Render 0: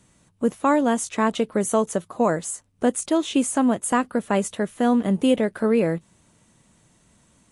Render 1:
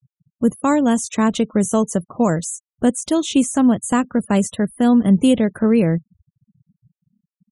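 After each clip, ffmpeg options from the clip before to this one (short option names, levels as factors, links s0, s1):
-filter_complex "[0:a]afftfilt=real='re*gte(hypot(re,im),0.01)':imag='im*gte(hypot(re,im),0.01)':win_size=1024:overlap=0.75,bass=f=250:g=12,treble=f=4000:g=13,acrossover=split=5200[s0][s1];[s1]acompressor=threshold=0.0398:ratio=4:attack=1:release=60[s2];[s0][s2]amix=inputs=2:normalize=0"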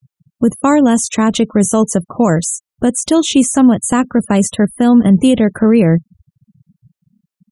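-af "alimiter=level_in=2.82:limit=0.891:release=50:level=0:latency=1,volume=0.891"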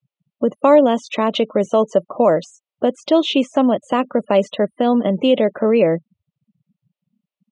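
-af "highpass=350,equalizer=f=580:t=q:w=4:g=9,equalizer=f=1600:t=q:w=4:g=-9,equalizer=f=2800:t=q:w=4:g=3,lowpass=f=3900:w=0.5412,lowpass=f=3900:w=1.3066,volume=0.841"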